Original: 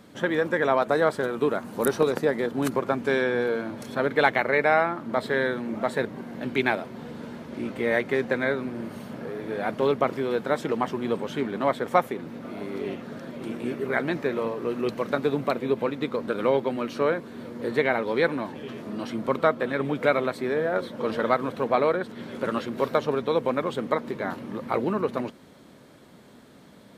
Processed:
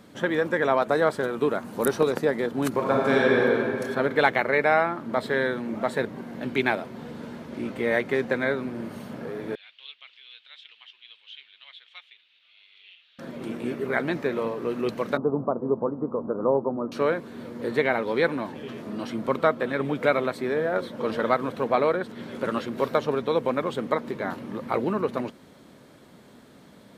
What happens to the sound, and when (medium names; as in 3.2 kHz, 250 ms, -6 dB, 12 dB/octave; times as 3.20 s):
2.69–3.35 s: reverb throw, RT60 2.8 s, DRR -3 dB
9.55–13.19 s: Butterworth band-pass 3.2 kHz, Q 2.5
15.17–16.92 s: steep low-pass 1.2 kHz 48 dB/octave